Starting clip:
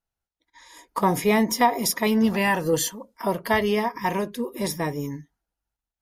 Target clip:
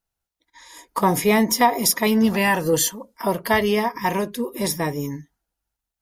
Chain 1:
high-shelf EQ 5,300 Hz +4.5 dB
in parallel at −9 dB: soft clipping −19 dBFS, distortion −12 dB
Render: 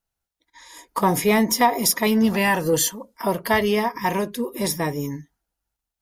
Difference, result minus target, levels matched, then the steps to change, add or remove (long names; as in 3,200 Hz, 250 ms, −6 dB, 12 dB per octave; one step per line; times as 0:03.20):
soft clipping: distortion +11 dB
change: soft clipping −10.5 dBFS, distortion −22 dB